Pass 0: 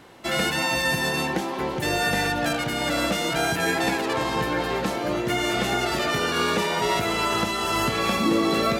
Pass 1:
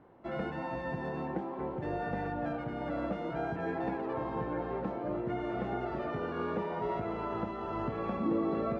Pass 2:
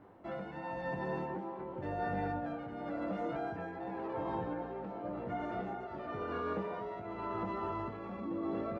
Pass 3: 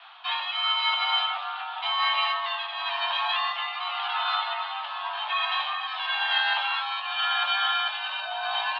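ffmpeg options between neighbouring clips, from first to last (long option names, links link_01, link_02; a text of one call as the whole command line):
ffmpeg -i in.wav -af "lowpass=1000,volume=-8.5dB" out.wav
ffmpeg -i in.wav -filter_complex "[0:a]alimiter=level_in=6dB:limit=-24dB:level=0:latency=1:release=93,volume=-6dB,tremolo=f=0.93:d=0.52,asplit=2[link_01][link_02];[link_02]aecho=0:1:10|21:0.447|0.531[link_03];[link_01][link_03]amix=inputs=2:normalize=0" out.wav
ffmpeg -i in.wav -af "equalizer=frequency=2400:width=0.35:gain=12,aexciter=amount=13.8:drive=5.3:freq=2600,highpass=frequency=330:width_type=q:width=0.5412,highpass=frequency=330:width_type=q:width=1.307,lowpass=frequency=3300:width_type=q:width=0.5176,lowpass=frequency=3300:width_type=q:width=0.7071,lowpass=frequency=3300:width_type=q:width=1.932,afreqshift=390,volume=4.5dB" out.wav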